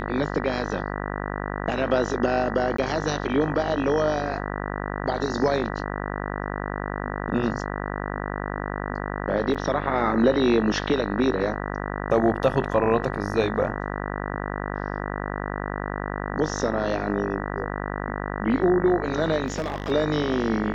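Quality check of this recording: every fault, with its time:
mains buzz 50 Hz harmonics 39 −30 dBFS
0:02.77–0:02.78: drop-out 14 ms
0:09.54–0:09.55: drop-out 6.3 ms
0:19.46–0:19.92: clipping −22.5 dBFS

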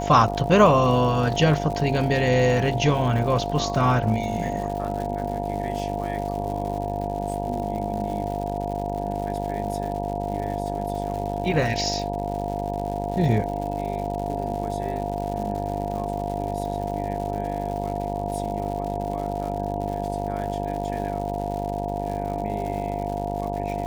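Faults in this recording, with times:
mains buzz 50 Hz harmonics 19 −30 dBFS
surface crackle 180 per second −32 dBFS
whistle 700 Hz −30 dBFS

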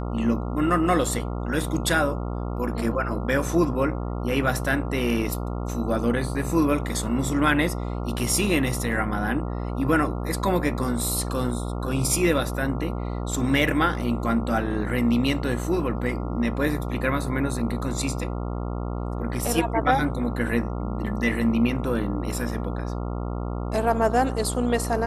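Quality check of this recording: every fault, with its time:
mains buzz 60 Hz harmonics 23 −29 dBFS

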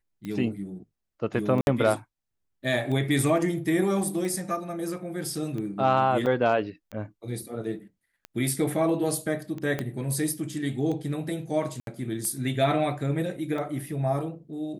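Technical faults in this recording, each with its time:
scratch tick 45 rpm −24 dBFS
0:01.61–0:01.67: drop-out 61 ms
0:06.26–0:06.27: drop-out 5.4 ms
0:09.79: click −16 dBFS
0:11.80–0:11.87: drop-out 72 ms

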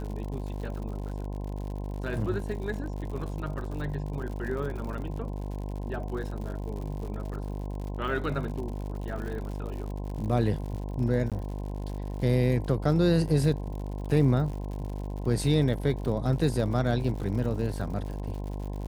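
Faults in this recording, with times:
mains buzz 50 Hz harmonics 21 −34 dBFS
surface crackle 95 per second −37 dBFS
0:11.30–0:11.32: drop-out 17 ms

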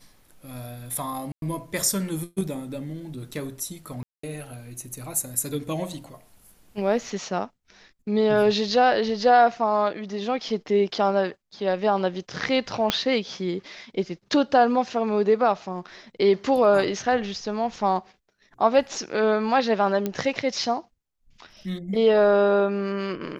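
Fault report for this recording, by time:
0:01.32–0:01.42: drop-out 102 ms
0:04.03–0:04.23: drop-out 204 ms
0:12.90: click −6 dBFS
0:20.06: click −13 dBFS

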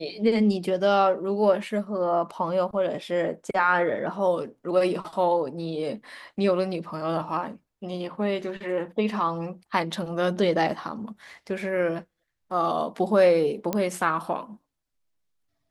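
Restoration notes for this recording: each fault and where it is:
0:13.73: click −12 dBFS

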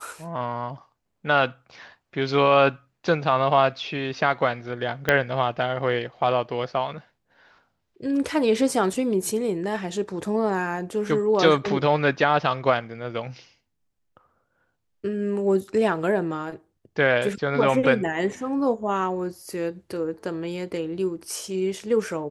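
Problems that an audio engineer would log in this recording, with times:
0:05.09: click −6 dBFS

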